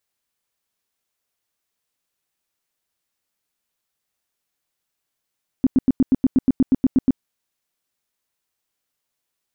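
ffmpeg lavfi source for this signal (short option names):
-f lavfi -i "aevalsrc='0.299*sin(2*PI*261*mod(t,0.12))*lt(mod(t,0.12),7/261)':d=1.56:s=44100"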